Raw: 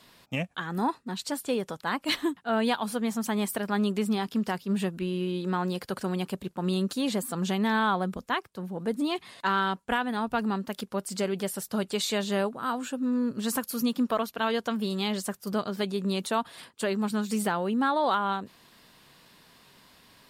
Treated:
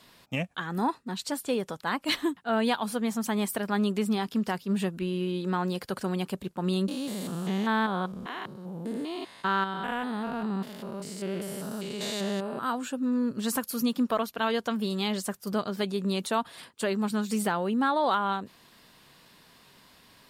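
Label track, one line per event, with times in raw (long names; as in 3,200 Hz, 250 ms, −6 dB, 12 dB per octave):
6.880000	12.590000	spectrum averaged block by block every 200 ms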